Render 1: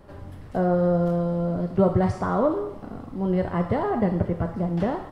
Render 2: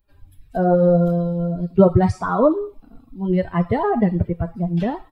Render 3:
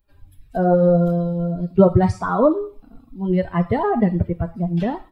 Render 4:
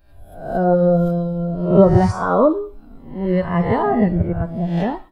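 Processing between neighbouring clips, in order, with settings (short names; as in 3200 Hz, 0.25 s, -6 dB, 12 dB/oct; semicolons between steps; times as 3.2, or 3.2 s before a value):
per-bin expansion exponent 2; gain +9 dB
Schroeder reverb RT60 0.33 s, combs from 26 ms, DRR 19.5 dB
spectral swells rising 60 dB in 0.61 s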